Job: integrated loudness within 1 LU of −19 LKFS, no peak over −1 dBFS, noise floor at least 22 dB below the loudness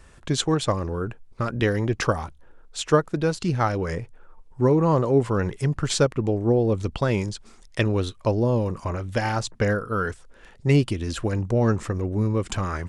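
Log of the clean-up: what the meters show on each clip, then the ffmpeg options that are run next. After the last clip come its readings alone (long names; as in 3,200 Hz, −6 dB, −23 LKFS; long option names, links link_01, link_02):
integrated loudness −24.0 LKFS; sample peak −6.5 dBFS; target loudness −19.0 LKFS
→ -af "volume=5dB"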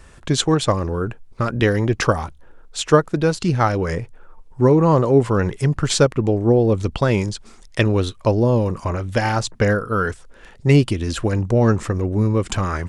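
integrated loudness −19.0 LKFS; sample peak −1.5 dBFS; background noise floor −45 dBFS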